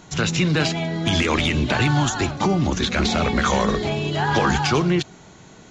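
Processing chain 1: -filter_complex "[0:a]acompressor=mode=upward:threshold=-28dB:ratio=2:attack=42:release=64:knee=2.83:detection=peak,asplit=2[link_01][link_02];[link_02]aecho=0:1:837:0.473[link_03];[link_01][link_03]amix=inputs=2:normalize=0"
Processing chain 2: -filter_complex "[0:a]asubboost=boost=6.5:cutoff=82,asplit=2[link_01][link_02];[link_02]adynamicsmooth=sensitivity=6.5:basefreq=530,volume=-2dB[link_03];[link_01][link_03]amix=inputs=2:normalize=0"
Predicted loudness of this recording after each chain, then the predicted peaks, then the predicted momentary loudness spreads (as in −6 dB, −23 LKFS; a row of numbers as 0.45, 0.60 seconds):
−20.0, −15.5 LKFS; −6.0, −1.0 dBFS; 4, 5 LU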